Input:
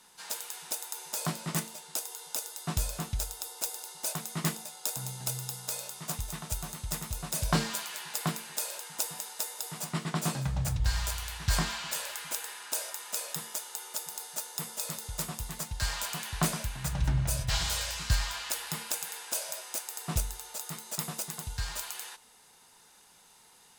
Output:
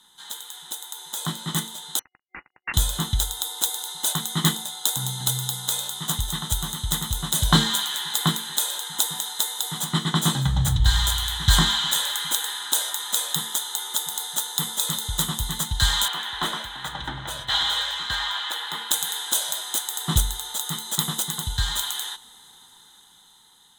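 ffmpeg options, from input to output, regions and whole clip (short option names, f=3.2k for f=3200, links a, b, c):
-filter_complex "[0:a]asettb=1/sr,asplit=3[a][b][c];[a]atrim=end=1.994[d];[b]atrim=start=1.99:end=2.74,asetpts=PTS-STARTPTS,afade=t=in:d=0.004:c=qsin,afade=t=out:st=0.746:d=0.004:c=qsin,acrusher=bits=4:mix=0:aa=0.5,lowpass=f=2.5k:t=q:w=0.5098,lowpass=f=2.5k:t=q:w=0.6013,lowpass=f=2.5k:t=q:w=0.9,lowpass=f=2.5k:t=q:w=2.563,afreqshift=-2900[e];[c]atrim=start=2.736[f];[d][e]acrossfade=d=0.004:c1=hsin:c2=qsin[g];[g][f]acrossfade=d=0.004:c1=qsin:c2=hsin,asettb=1/sr,asplit=3[h][i][j];[h]atrim=end=16.084[k];[i]atrim=start=16.08:end=18.91,asetpts=PTS-STARTPTS,afade=t=in:d=0.004:c=qsin,afade=t=out:st=2.826:d=0.004:c=qsin,acrossover=split=310 3400:gain=0.0708 1 0.178[l][m][n];[l][m][n]amix=inputs=3:normalize=0,asoftclip=type=hard:threshold=-30.5dB[o];[j]atrim=start=18.906[p];[k][o]acrossfade=d=0.004:c1=hsin:c2=qsin[q];[q][p]acrossfade=d=0.004:c1=qsin:c2=hsin,superequalizer=7b=0.501:8b=0.355:12b=0.316:13b=3.16:14b=0.398,dynaudnorm=f=500:g=7:m=11dB"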